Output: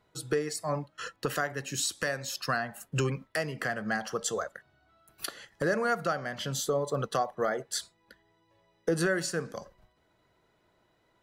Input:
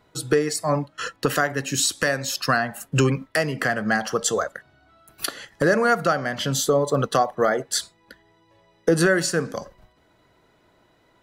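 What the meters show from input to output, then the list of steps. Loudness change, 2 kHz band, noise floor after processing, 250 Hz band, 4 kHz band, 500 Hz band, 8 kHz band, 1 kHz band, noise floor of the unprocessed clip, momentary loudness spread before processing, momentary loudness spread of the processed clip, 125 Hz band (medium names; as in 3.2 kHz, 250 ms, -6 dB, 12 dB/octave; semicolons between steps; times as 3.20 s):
-9.0 dB, -9.0 dB, -71 dBFS, -10.5 dB, -9.0 dB, -9.0 dB, -9.0 dB, -9.0 dB, -61 dBFS, 10 LU, 10 LU, -9.0 dB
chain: peaking EQ 270 Hz -5 dB 0.21 oct; trim -9 dB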